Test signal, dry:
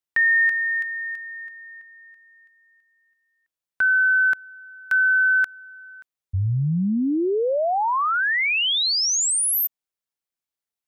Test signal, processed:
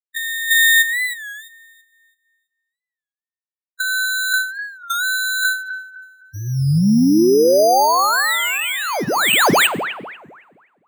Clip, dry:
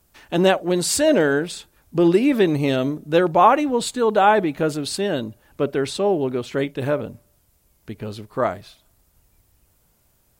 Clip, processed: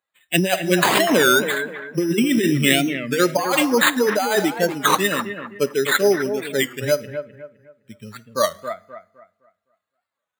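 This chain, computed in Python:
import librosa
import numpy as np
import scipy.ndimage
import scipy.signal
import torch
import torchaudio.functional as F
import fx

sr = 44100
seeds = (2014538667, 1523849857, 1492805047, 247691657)

p1 = fx.bin_expand(x, sr, power=2.0)
p2 = fx.curve_eq(p1, sr, hz=(630.0, 3800.0, 9800.0), db=(0, 11, 0))
p3 = fx.rev_double_slope(p2, sr, seeds[0], early_s=0.54, late_s=1.7, knee_db=-22, drr_db=17.5)
p4 = np.repeat(p3[::8], 8)[:len(p3)]
p5 = fx.over_compress(p4, sr, threshold_db=-23.0, ratio=-1.0)
p6 = scipy.signal.sosfilt(scipy.signal.butter(4, 150.0, 'highpass', fs=sr, output='sos'), p5)
p7 = p6 + fx.echo_bbd(p6, sr, ms=256, stages=4096, feedback_pct=32, wet_db=-9.0, dry=0)
p8 = fx.record_warp(p7, sr, rpm=33.33, depth_cents=160.0)
y = F.gain(torch.from_numpy(p8), 6.0).numpy()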